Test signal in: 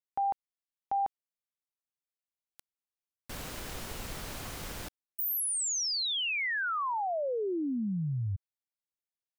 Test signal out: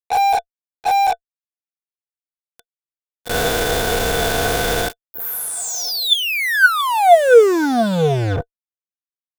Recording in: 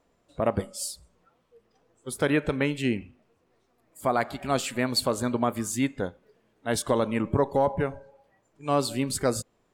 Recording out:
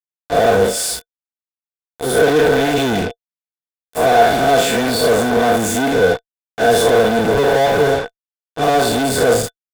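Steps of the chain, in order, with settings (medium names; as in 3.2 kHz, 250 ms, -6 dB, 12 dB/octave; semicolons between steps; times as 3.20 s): spectral blur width 118 ms; fuzz box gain 55 dB, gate -47 dBFS; small resonant body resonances 470/690/1500/3500 Hz, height 16 dB, ringing for 55 ms; trim -5.5 dB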